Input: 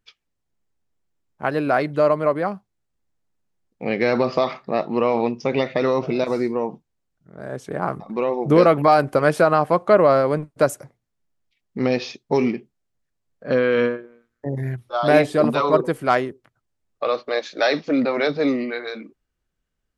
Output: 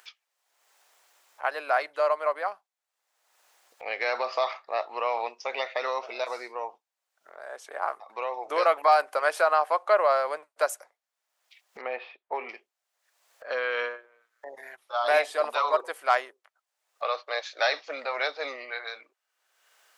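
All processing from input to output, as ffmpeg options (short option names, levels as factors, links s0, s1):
-filter_complex "[0:a]asettb=1/sr,asplit=3[s0][s1][s2];[s0]atrim=end=11.814[s3];[s1]atrim=start=11.81:end=12.49,asetpts=PTS-STARTPTS,afade=t=in:d=0.004:c=qsin,afade=t=out:st=0.676:d=0.004:c=qsin,lowpass=f=2900:w=0.5412,lowpass=f=2900:w=1.3066,aemphasis=mode=reproduction:type=75kf[s4];[s2]atrim=start=12.486[s5];[s3][s4]acrossfade=d=0.004:c1=hsin:c2=qsin[s6];[s6][s5]acrossfade=d=0.004:c1=qsin:c2=hsin,highpass=f=650:w=0.5412,highpass=f=650:w=1.3066,acompressor=mode=upward:threshold=0.0141:ratio=2.5,volume=0.708"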